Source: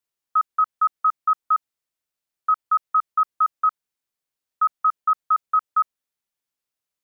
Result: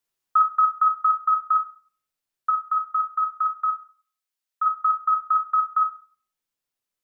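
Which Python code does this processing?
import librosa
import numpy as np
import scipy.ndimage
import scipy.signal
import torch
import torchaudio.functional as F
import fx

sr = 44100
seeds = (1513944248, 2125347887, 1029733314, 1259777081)

y = fx.room_shoebox(x, sr, seeds[0], volume_m3=46.0, walls='mixed', distance_m=0.36)
y = fx.rider(y, sr, range_db=10, speed_s=2.0)
y = fx.highpass(y, sr, hz=1200.0, slope=6, at=(2.5, 4.66))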